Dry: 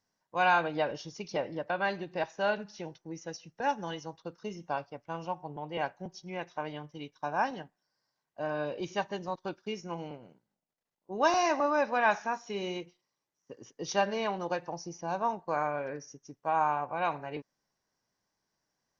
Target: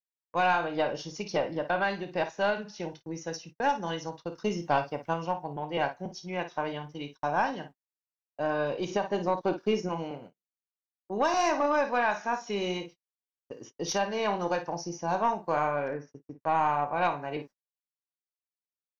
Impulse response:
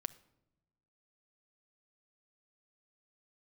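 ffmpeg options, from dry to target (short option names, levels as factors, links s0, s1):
-filter_complex "[0:a]asettb=1/sr,asplit=3[s0][s1][s2];[s0]atrim=end=8.894[s3];[s1]atrim=start=8.89:end=9.89,asetpts=PTS-STARTPTS,afade=t=in:d=0.004:c=qsin,afade=t=out:st=0.996:d=0.004:c=qsin,equalizer=f=430:w=0.4:g=8.5[s4];[s2]atrim=start=9.886[s5];[s3][s4]acrossfade=d=0.004:c1=hsin:c2=qsin[s6];[s6][s5]acrossfade=d=0.004:c1=qsin:c2=hsin,asettb=1/sr,asplit=3[s7][s8][s9];[s7]atrim=end=15.884[s10];[s8]atrim=start=15.88:end=16.41,asetpts=PTS-STARTPTS,afade=t=in:d=0.004:c=qsin,afade=t=out:st=0.526:d=0.004:c=qsin,lowpass=2000[s11];[s9]atrim=start=16.406[s12];[s10][s11]acrossfade=d=0.004:c1=hsin:c2=qsin[s13];[s13][s12]acrossfade=d=0.004:c1=qsin:c2=hsin,equalizer=f=66:w=1.6:g=-9.5,aecho=1:1:29|55:0.237|0.282,alimiter=limit=0.106:level=0:latency=1:release=331,asettb=1/sr,asplit=3[s14][s15][s16];[s14]atrim=end=4.384[s17];[s15]atrim=start=4.38:end=5.14,asetpts=PTS-STARTPTS,afade=t=in:d=0.004:c=qsin,afade=t=out:st=0.756:d=0.004:c=qsin,acontrast=24[s18];[s16]atrim=start=5.136[s19];[s17][s18]acrossfade=d=0.004:c1=hsin:c2=qsin[s20];[s20][s19]acrossfade=d=0.004:c1=qsin:c2=hsin,aeval=exprs='(tanh(10*val(0)+0.25)-tanh(0.25))/10':c=same,agate=range=0.01:threshold=0.00282:ratio=16:detection=peak,volume=1.78"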